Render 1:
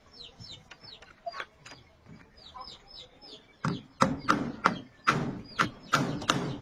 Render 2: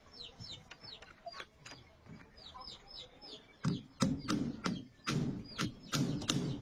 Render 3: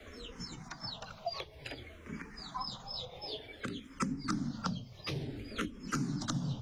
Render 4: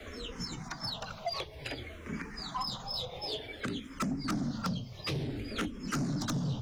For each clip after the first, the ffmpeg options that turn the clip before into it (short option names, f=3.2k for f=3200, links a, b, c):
-filter_complex "[0:a]acrossover=split=400|3000[a][b][c];[b]acompressor=threshold=-49dB:ratio=2.5[d];[a][d][c]amix=inputs=3:normalize=0,volume=-2.5dB"
-filter_complex "[0:a]acrossover=split=110|1200[a][b][c];[a]acompressor=threshold=-56dB:ratio=4[d];[b]acompressor=threshold=-48dB:ratio=4[e];[c]acompressor=threshold=-53dB:ratio=4[f];[d][e][f]amix=inputs=3:normalize=0,asplit=2[g][h];[h]afreqshift=-0.55[i];[g][i]amix=inputs=2:normalize=1,volume=13.5dB"
-af "asoftclip=type=tanh:threshold=-33.5dB,volume=6dB"